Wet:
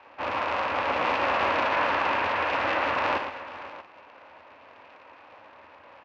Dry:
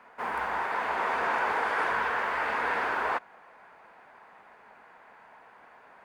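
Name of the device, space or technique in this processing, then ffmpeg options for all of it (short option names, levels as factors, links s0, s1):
ring modulator pedal into a guitar cabinet: -af "aeval=exprs='val(0)*sgn(sin(2*PI*160*n/s))':c=same,highpass=80,equalizer=f=85:t=q:w=4:g=8,equalizer=f=160:t=q:w=4:g=-8,equalizer=f=280:t=q:w=4:g=5,equalizer=f=560:t=q:w=4:g=9,equalizer=f=960:t=q:w=4:g=7,equalizer=f=2600:t=q:w=4:g=9,lowpass=f=4400:w=0.5412,lowpass=f=4400:w=1.3066,equalizer=f=6100:w=1.3:g=3,aecho=1:1:53|115|245|497|634:0.335|0.422|0.15|0.168|0.15,volume=0.794"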